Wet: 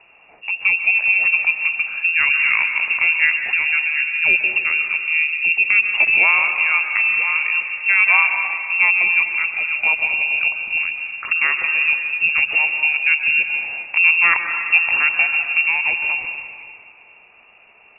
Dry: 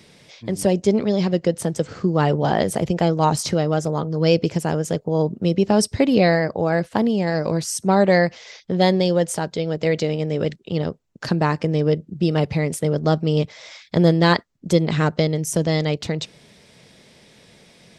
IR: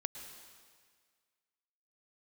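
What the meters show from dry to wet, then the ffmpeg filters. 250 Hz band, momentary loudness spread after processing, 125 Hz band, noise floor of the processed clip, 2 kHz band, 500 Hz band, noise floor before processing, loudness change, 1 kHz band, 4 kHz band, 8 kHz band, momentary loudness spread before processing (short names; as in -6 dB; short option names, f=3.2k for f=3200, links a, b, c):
under -25 dB, 7 LU, under -30 dB, -49 dBFS, +17.0 dB, -23.0 dB, -53 dBFS, +5.0 dB, -4.0 dB, n/a, under -40 dB, 8 LU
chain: -filter_complex "[1:a]atrim=start_sample=2205,asetrate=36162,aresample=44100[a];[0:a][a]afir=irnorm=-1:irlink=0,lowpass=f=2.5k:t=q:w=0.5098,lowpass=f=2.5k:t=q:w=0.6013,lowpass=f=2.5k:t=q:w=0.9,lowpass=f=2.5k:t=q:w=2.563,afreqshift=-2900,volume=1.5dB"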